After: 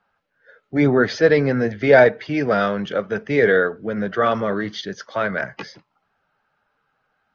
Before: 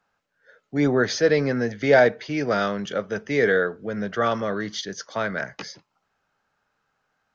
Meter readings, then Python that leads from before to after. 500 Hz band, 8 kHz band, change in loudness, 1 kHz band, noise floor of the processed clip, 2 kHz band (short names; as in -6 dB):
+4.0 dB, n/a, +4.0 dB, +4.0 dB, -72 dBFS, +3.5 dB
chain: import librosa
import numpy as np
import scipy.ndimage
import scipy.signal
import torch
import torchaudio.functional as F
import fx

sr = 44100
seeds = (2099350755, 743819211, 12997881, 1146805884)

y = fx.spec_quant(x, sr, step_db=15)
y = scipy.signal.sosfilt(scipy.signal.butter(2, 3500.0, 'lowpass', fs=sr, output='sos'), y)
y = F.gain(torch.from_numpy(y), 4.5).numpy()